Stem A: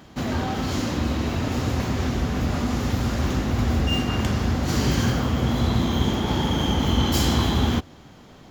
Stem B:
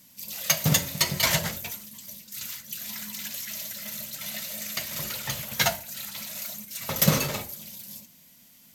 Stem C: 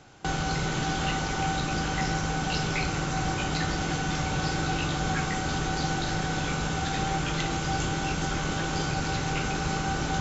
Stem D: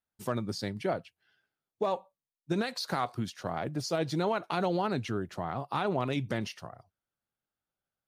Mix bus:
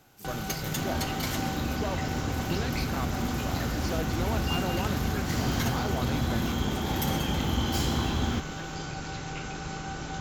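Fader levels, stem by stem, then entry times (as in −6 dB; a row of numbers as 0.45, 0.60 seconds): −7.5, −13.0, −7.5, −5.0 decibels; 0.60, 0.00, 0.00, 0.00 seconds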